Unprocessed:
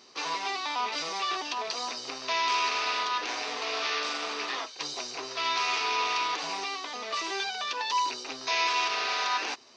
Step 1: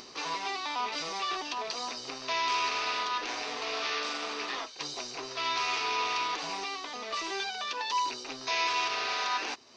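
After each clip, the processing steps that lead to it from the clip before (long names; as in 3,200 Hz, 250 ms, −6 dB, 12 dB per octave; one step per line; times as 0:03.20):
upward compression, threshold −38 dBFS
low-shelf EQ 190 Hz +8 dB
level −2.5 dB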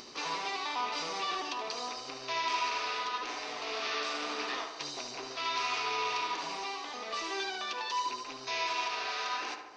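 tape delay 73 ms, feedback 72%, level −5.5 dB, low-pass 2,400 Hz
speech leveller 2 s
level −4 dB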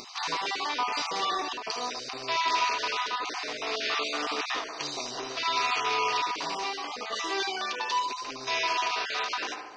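time-frequency cells dropped at random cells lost 20%
every ending faded ahead of time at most 110 dB per second
level +6 dB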